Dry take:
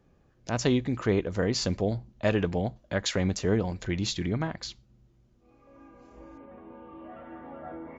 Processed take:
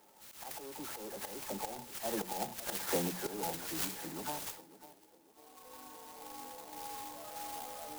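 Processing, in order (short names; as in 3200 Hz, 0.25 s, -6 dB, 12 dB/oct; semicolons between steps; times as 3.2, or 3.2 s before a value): spectral delay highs early, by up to 0.278 s; Doppler pass-by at 2.62, 30 m/s, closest 11 m; HPF 180 Hz 24 dB/oct; low shelf 280 Hz -7 dB; notches 60/120/180/240 Hz; auto swell 0.254 s; overdrive pedal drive 24 dB, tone 5600 Hz, clips at -50.5 dBFS; small resonant body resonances 850/3200 Hz, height 16 dB, ringing for 45 ms; on a send: narrowing echo 0.548 s, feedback 46%, band-pass 480 Hz, level -14 dB; on the sum: clock jitter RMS 0.13 ms; gain +8 dB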